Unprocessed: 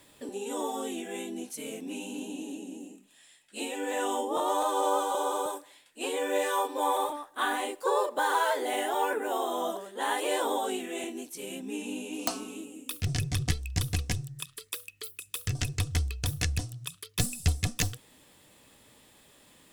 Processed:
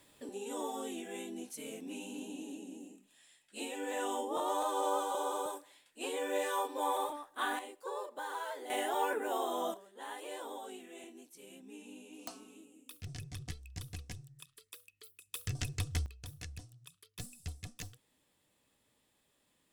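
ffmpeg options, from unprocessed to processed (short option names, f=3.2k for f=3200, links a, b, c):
-af "asetnsamples=n=441:p=0,asendcmd='7.59 volume volume -14dB;8.7 volume volume -4.5dB;9.74 volume volume -15dB;15.33 volume volume -6.5dB;16.06 volume volume -17dB',volume=-6dB"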